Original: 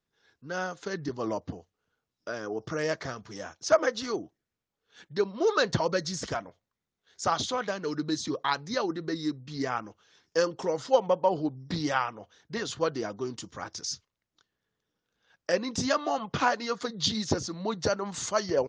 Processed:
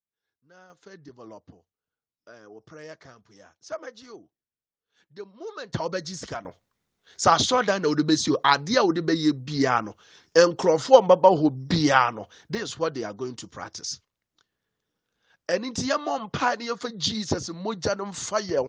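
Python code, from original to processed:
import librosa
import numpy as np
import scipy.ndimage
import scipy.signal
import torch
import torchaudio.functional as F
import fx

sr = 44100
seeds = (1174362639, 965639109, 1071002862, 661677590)

y = fx.gain(x, sr, db=fx.steps((0.0, -20.0), (0.7, -12.5), (5.74, -1.5), (6.45, 9.0), (12.55, 1.5)))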